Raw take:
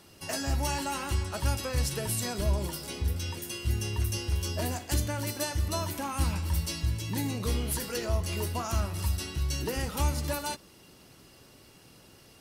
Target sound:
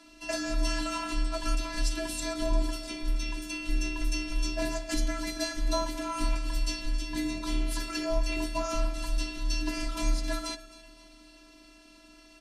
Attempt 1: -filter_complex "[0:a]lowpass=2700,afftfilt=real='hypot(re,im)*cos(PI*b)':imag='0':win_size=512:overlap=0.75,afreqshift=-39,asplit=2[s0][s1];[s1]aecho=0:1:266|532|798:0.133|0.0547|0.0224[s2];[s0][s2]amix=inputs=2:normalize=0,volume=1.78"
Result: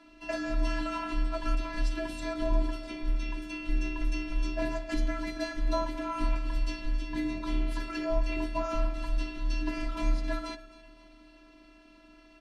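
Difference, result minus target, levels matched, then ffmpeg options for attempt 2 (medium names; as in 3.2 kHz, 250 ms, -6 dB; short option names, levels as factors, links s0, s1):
8 kHz band -12.5 dB
-filter_complex "[0:a]lowpass=6700,afftfilt=real='hypot(re,im)*cos(PI*b)':imag='0':win_size=512:overlap=0.75,afreqshift=-39,asplit=2[s0][s1];[s1]aecho=0:1:266|532|798:0.133|0.0547|0.0224[s2];[s0][s2]amix=inputs=2:normalize=0,volume=1.78"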